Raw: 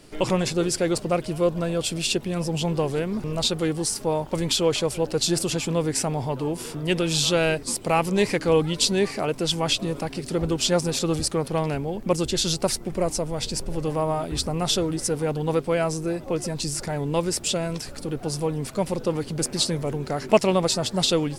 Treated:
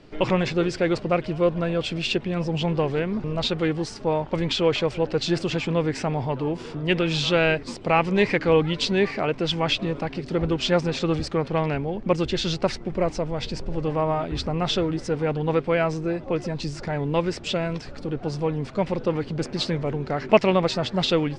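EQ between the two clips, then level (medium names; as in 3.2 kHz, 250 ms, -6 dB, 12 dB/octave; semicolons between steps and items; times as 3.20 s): distance through air 100 m; dynamic bell 2.1 kHz, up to +6 dB, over -41 dBFS, Q 1.1; distance through air 89 m; +1.0 dB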